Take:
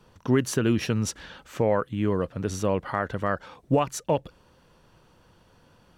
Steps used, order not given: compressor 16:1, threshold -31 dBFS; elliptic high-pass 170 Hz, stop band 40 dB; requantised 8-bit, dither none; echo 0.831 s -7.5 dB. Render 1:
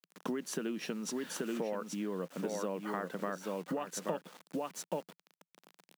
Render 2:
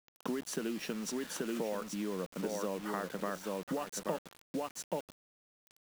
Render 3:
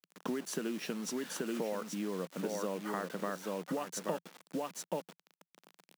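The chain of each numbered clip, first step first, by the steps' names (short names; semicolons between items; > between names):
echo > requantised > compressor > elliptic high-pass; echo > compressor > elliptic high-pass > requantised; echo > compressor > requantised > elliptic high-pass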